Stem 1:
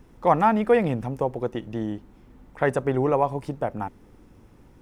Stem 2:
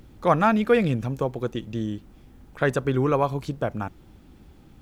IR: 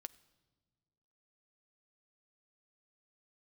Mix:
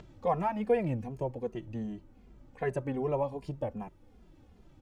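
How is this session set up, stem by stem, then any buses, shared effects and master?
−10.0 dB, 0.00 s, no send, low-shelf EQ 85 Hz +9 dB
−6.0 dB, 0.00 s, no send, downward compressor, threshold −21 dBFS, peak gain reduction 8 dB; Butterworth low-pass 7,900 Hz 72 dB per octave; upward compression, threshold −35 dBFS; automatic ducking −8 dB, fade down 0.30 s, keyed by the first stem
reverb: not used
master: parametric band 590 Hz +4.5 dB 0.72 octaves; barber-pole flanger 2.5 ms −2.6 Hz

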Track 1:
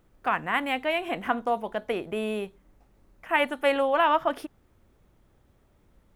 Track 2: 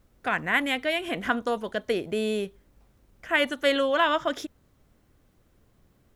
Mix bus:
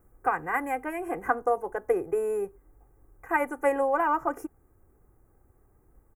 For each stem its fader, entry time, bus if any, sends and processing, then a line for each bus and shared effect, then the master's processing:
−3.0 dB, 0.00 s, no send, transient designer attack +4 dB, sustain 0 dB; comb filter 2.5 ms, depth 61%
−2.5 dB, 2.1 ms, no send, high-shelf EQ 4,200 Hz +7.5 dB; automatic ducking −6 dB, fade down 0.25 s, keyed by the first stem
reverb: not used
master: Butterworth band-reject 3,800 Hz, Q 0.53

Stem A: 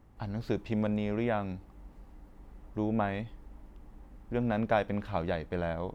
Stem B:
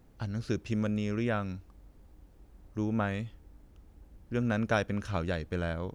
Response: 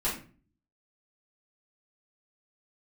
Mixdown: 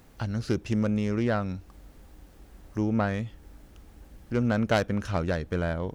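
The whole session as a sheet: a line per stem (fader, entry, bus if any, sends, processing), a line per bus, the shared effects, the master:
−10.5 dB, 0.00 s, no send, no processing
+3.0 dB, 0.00 s, no send, phase distortion by the signal itself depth 0.13 ms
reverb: not used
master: one half of a high-frequency compander encoder only

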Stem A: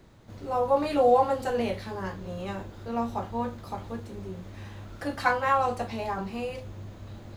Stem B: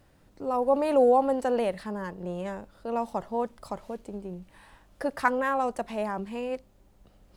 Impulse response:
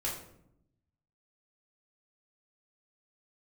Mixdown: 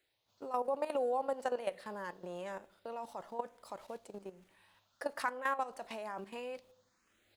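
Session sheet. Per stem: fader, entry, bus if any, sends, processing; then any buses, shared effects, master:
−17.5 dB, 0.00 s, no send, tilt shelving filter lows −10 dB; downward compressor, threshold −30 dBFS, peak gain reduction 13 dB; frequency shifter mixed with the dry sound +1.1 Hz; automatic ducking −6 dB, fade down 0.45 s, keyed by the second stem
+0.5 dB, 2.9 ms, send −21.5 dB, downward expander −46 dBFS; low-shelf EQ 320 Hz −10 dB; output level in coarse steps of 14 dB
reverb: on, RT60 0.75 s, pre-delay 3 ms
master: low-shelf EQ 170 Hz −11 dB; downward compressor 2 to 1, threshold −33 dBFS, peak gain reduction 5 dB

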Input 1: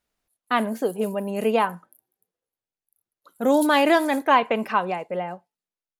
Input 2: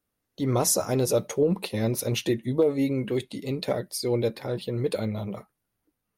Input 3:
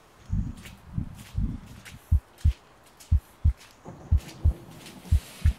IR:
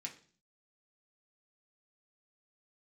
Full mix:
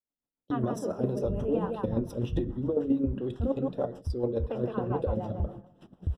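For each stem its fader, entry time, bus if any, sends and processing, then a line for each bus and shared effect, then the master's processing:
−18.5 dB, 0.00 s, muted 0:03.52–0:04.43, no bus, send −3 dB, echo send −3 dB, no processing
−2.0 dB, 0.10 s, bus A, send −5 dB, no echo send, square-wave tremolo 7.5 Hz, depth 65%, duty 15%
−3.5 dB, 0.95 s, bus A, no send, no echo send, brickwall limiter −22.5 dBFS, peak gain reduction 10.5 dB
bus A: 0.0 dB, noise gate −45 dBFS, range −19 dB; downward compressor 2 to 1, threshold −39 dBFS, peak gain reduction 9 dB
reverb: on, RT60 0.45 s, pre-delay 3 ms
echo: repeating echo 164 ms, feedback 30%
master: automatic gain control gain up to 9.5 dB; moving average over 20 samples; rotating-speaker cabinet horn 7 Hz

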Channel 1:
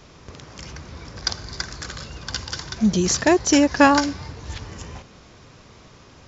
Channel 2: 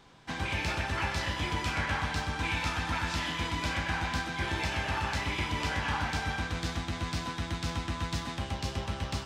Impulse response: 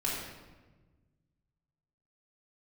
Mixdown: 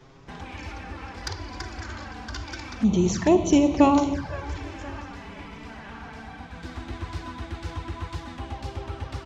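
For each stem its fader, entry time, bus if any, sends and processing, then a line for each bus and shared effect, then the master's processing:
−2.5 dB, 0.00 s, send −12 dB, echo send −16 dB, no processing
+1.0 dB, 0.00 s, send −12 dB, no echo send, automatic ducking −18 dB, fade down 1.25 s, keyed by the first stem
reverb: on, RT60 1.3 s, pre-delay 3 ms
echo: repeating echo 517 ms, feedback 50%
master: high-shelf EQ 2,500 Hz −9.5 dB; flanger swept by the level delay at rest 8.5 ms, full sweep at −17.5 dBFS

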